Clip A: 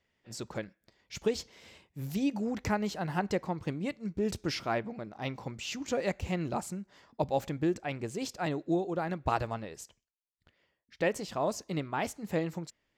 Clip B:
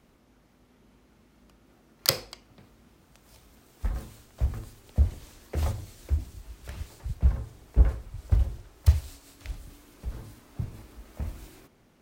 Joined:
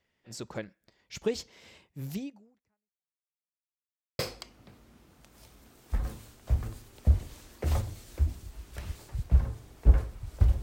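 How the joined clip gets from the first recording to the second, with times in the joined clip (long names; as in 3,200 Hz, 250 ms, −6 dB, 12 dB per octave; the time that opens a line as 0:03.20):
clip A
0:02.14–0:03.25: fade out exponential
0:03.25–0:04.19: silence
0:04.19: continue with clip B from 0:02.10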